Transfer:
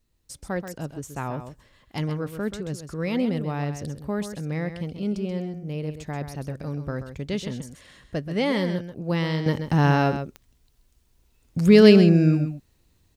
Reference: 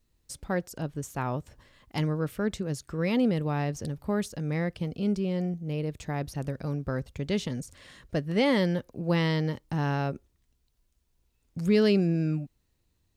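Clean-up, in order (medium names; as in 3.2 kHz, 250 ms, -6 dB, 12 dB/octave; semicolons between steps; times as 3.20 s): de-click; inverse comb 131 ms -9.5 dB; gain correction -9 dB, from 9.46 s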